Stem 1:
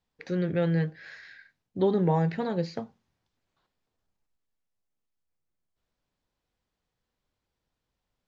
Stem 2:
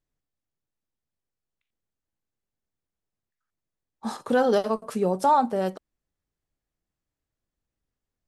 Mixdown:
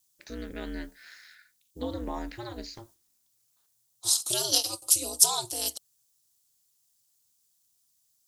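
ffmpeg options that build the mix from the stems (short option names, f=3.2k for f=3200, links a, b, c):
-filter_complex "[0:a]equalizer=f=530:t=o:w=0.56:g=-9.5,volume=-3dB,asplit=2[a][b];[1:a]aexciter=amount=13.3:drive=5.3:freq=2.6k,volume=-6dB[c];[b]apad=whole_len=364823[d];[c][d]sidechaingate=range=-6dB:threshold=-52dB:ratio=16:detection=peak[e];[a][e]amix=inputs=2:normalize=0,bass=f=250:g=-6,treble=f=4k:g=14,aeval=exprs='val(0)*sin(2*PI*120*n/s)':c=same"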